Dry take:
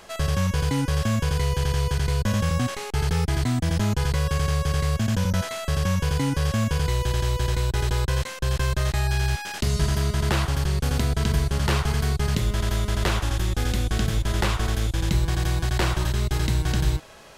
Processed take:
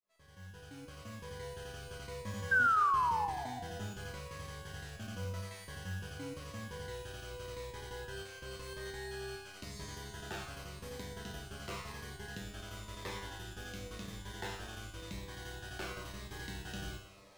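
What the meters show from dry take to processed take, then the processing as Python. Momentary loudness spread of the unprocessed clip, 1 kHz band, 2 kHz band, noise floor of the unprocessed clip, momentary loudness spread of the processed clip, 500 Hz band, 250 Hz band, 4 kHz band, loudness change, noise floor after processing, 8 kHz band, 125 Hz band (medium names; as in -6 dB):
2 LU, -5.5 dB, -7.0 dB, -37 dBFS, 12 LU, -15.0 dB, -20.5 dB, -16.0 dB, -15.0 dB, -53 dBFS, -17.0 dB, -23.5 dB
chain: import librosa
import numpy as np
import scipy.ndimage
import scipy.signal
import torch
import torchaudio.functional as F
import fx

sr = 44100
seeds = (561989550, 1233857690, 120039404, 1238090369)

y = fx.fade_in_head(x, sr, length_s=2.72)
y = fx.low_shelf(y, sr, hz=220.0, db=-12.0)
y = fx.comb_fb(y, sr, f0_hz=98.0, decay_s=0.66, harmonics='all', damping=0.0, mix_pct=90)
y = fx.mod_noise(y, sr, seeds[0], snr_db=20)
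y = fx.high_shelf(y, sr, hz=3100.0, db=-7.0)
y = fx.rider(y, sr, range_db=5, speed_s=2.0)
y = fx.spec_paint(y, sr, seeds[1], shape='fall', start_s=2.51, length_s=0.95, low_hz=680.0, high_hz=1600.0, level_db=-25.0)
y = fx.rev_gated(y, sr, seeds[2], gate_ms=390, shape='falling', drr_db=11.0)
y = fx.notch_cascade(y, sr, direction='falling', hz=0.93)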